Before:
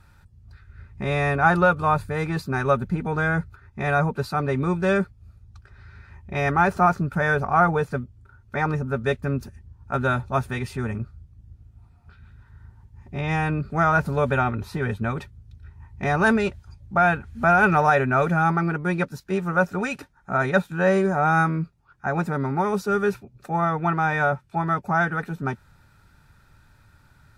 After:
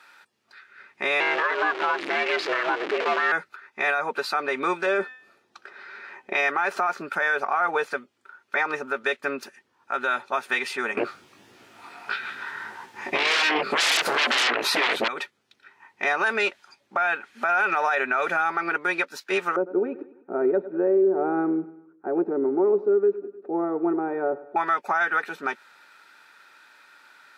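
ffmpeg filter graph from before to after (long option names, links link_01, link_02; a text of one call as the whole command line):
ffmpeg -i in.wav -filter_complex "[0:a]asettb=1/sr,asplit=3[link_01][link_02][link_03];[link_01]atrim=end=1.204[link_04];[link_02]atrim=start=1.2:end=3.32,asetpts=PTS-STARTPTS,afade=type=in:duration=0.004:curve=qsin,afade=type=out:start_time=2.116:duration=0.004:curve=qsin,aeval=exprs='val(0)+0.5*0.0708*sgn(val(0))':channel_layout=same,lowpass=3400,aeval=exprs='val(0)*sin(2*PI*240*n/s)':channel_layout=same[link_05];[link_03]atrim=start=3.316[link_06];[link_04][link_05]acrossfade=duration=0.004:curve1=hsin:curve2=qsin[link_07];[link_07][link_06]acrossfade=duration=0.004:curve1=qsin:curve2=hsin,asettb=1/sr,asplit=3[link_08][link_09][link_10];[link_08]atrim=end=4.864[link_11];[link_09]atrim=start=4.86:end=6.33,asetpts=PTS-STARTPTS,afade=type=in:duration=0.004:curve=qsin,afade=type=out:start_time=1.466:duration=0.004:curve=qsin,equalizer=frequency=400:width_type=o:width=2.5:gain=9.5,bandreject=frequency=254.8:width_type=h:width=4,bandreject=frequency=509.6:width_type=h:width=4,bandreject=frequency=764.4:width_type=h:width=4,bandreject=frequency=1019.2:width_type=h:width=4,bandreject=frequency=1274:width_type=h:width=4,bandreject=frequency=1528.8:width_type=h:width=4,bandreject=frequency=1783.6:width_type=h:width=4,bandreject=frequency=2038.4:width_type=h:width=4,bandreject=frequency=2293.2:width_type=h:width=4,bandreject=frequency=2548:width_type=h:width=4,bandreject=frequency=2802.8:width_type=h:width=4,bandreject=frequency=3057.6:width_type=h:width=4,bandreject=frequency=3312.4:width_type=h:width=4,bandreject=frequency=3567.2:width_type=h:width=4,bandreject=frequency=3822:width_type=h:width=4,bandreject=frequency=4076.8:width_type=h:width=4,bandreject=frequency=4331.6:width_type=h:width=4,bandreject=frequency=4586.4:width_type=h:width=4,bandreject=frequency=4841.2:width_type=h:width=4,bandreject=frequency=5096:width_type=h:width=4,bandreject=frequency=5350.8:width_type=h:width=4,bandreject=frequency=5605.6:width_type=h:width=4,bandreject=frequency=5860.4:width_type=h:width=4,bandreject=frequency=6115.2:width_type=h:width=4,bandreject=frequency=6370:width_type=h:width=4,bandreject=frequency=6624.8:width_type=h:width=4,bandreject=frequency=6879.6:width_type=h:width=4,bandreject=frequency=7134.4:width_type=h:width=4[link_12];[link_10]atrim=start=6.326[link_13];[link_11][link_12]acrossfade=duration=0.004:curve1=hsin:curve2=qsin[link_14];[link_14][link_13]acrossfade=duration=0.004:curve1=qsin:curve2=hsin,asettb=1/sr,asplit=3[link_15][link_16][link_17];[link_15]atrim=end=10.974[link_18];[link_16]atrim=start=10.97:end=15.08,asetpts=PTS-STARTPTS,afade=type=in:duration=0.004:curve=qsin,afade=type=out:start_time=4.106:duration=0.004:curve=qsin,flanger=delay=16:depth=5.6:speed=1.6,aeval=exprs='0.266*sin(PI/2*7.94*val(0)/0.266)':channel_layout=same[link_19];[link_17]atrim=start=15.076[link_20];[link_18][link_19]acrossfade=duration=0.004:curve1=hsin:curve2=qsin[link_21];[link_21][link_20]acrossfade=duration=0.004:curve1=qsin:curve2=hsin,asettb=1/sr,asplit=3[link_22][link_23][link_24];[link_22]atrim=end=19.564[link_25];[link_23]atrim=start=19.56:end=24.56,asetpts=PTS-STARTPTS,afade=type=in:duration=0.004:curve=qsin,afade=type=out:start_time=4.996:duration=0.004:curve=qsin,lowpass=frequency=360:width_type=q:width=3.9,aecho=1:1:99|198|297|396:0.133|0.068|0.0347|0.0177,atrim=end_sample=220500[link_26];[link_24]atrim=start=24.556[link_27];[link_25][link_26]acrossfade=duration=0.004:curve1=hsin:curve2=qsin[link_28];[link_28][link_27]acrossfade=duration=0.004:curve1=qsin:curve2=hsin,highpass=frequency=320:width=0.5412,highpass=frequency=320:width=1.3066,equalizer=frequency=2500:width_type=o:width=2.7:gain=12,alimiter=limit=-14dB:level=0:latency=1:release=140" out.wav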